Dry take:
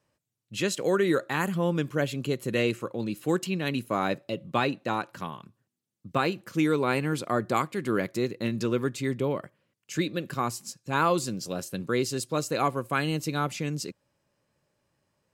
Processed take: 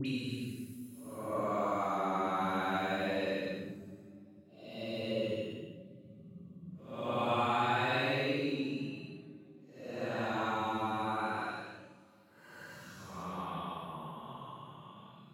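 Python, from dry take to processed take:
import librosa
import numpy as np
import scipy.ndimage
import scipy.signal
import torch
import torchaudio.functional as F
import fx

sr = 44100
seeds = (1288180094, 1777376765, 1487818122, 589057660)

y = fx.hum_notches(x, sr, base_hz=50, count=8)
y = fx.paulstretch(y, sr, seeds[0], factor=9.1, window_s=0.1, from_s=3.76)
y = fx.dispersion(y, sr, late='highs', ms=58.0, hz=1700.0)
y = y * 10.0 ** (-6.5 / 20.0)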